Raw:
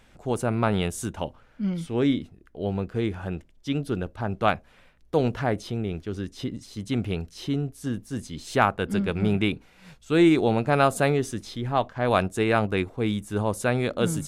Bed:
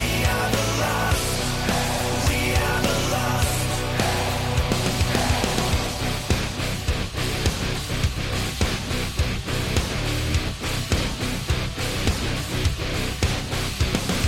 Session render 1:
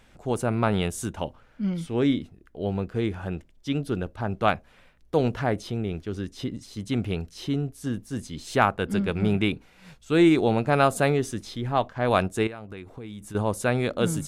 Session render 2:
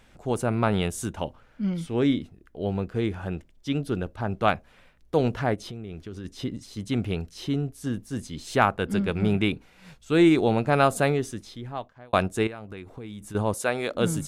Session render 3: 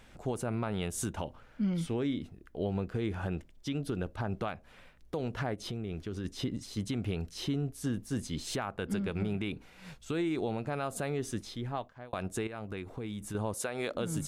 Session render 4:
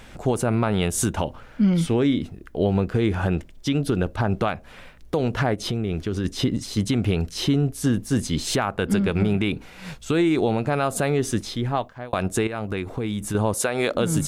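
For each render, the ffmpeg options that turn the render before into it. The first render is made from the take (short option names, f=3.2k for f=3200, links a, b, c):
-filter_complex "[0:a]asettb=1/sr,asplit=3[a][b][c];[a]atrim=end=12.474[d];[b]atrim=start=12.47:end=13.35,asetpts=PTS-STARTPTS,afade=t=in:d=0.004:c=qsin,afade=t=out:st=0.876:d=0.004:c=qsin,acompressor=threshold=-35dB:ratio=8:attack=3.2:release=140:knee=1:detection=peak[e];[c]atrim=start=13.346[f];[d][e]acrossfade=d=0.004:c1=hsin:c2=qsin[g];[g][f]acrossfade=d=0.004:c1=qsin:c2=hsin"
-filter_complex "[0:a]asplit=3[a][b][c];[a]afade=t=out:st=5.54:d=0.02[d];[b]acompressor=threshold=-34dB:ratio=4:attack=3.2:release=140:knee=1:detection=peak,afade=t=in:st=5.54:d=0.02,afade=t=out:st=6.24:d=0.02[e];[c]afade=t=in:st=6.24:d=0.02[f];[d][e][f]amix=inputs=3:normalize=0,asettb=1/sr,asplit=3[g][h][i];[g]atrim=end=13.544[j];[h]atrim=start=13.54:end=13.95,asetpts=PTS-STARTPTS,afade=t=in:d=0.004:c=qsin,afade=t=out:st=0.406:d=0.004:c=qsin,bass=f=250:g=-14,treble=f=4k:g=2[k];[i]atrim=start=13.946[l];[j][k]acrossfade=d=0.004:c1=hsin:c2=qsin[m];[m][l]acrossfade=d=0.004:c1=qsin:c2=hsin,asplit=2[n][o];[n]atrim=end=12.13,asetpts=PTS-STARTPTS,afade=t=out:st=10.98:d=1.15[p];[o]atrim=start=12.13,asetpts=PTS-STARTPTS,afade=t=in:d=0.004:c=hsin[q];[p][q]concat=n=2:v=0:a=1"
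-af "acompressor=threshold=-26dB:ratio=6,alimiter=limit=-23.5dB:level=0:latency=1:release=153"
-af "volume=12dB"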